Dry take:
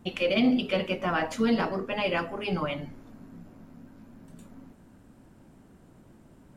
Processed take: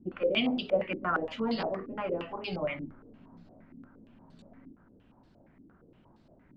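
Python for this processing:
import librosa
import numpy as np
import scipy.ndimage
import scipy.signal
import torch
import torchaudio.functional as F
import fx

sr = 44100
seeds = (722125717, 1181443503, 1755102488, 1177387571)

y = fx.filter_held_lowpass(x, sr, hz=8.6, low_hz=310.0, high_hz=4300.0)
y = y * 10.0 ** (-7.5 / 20.0)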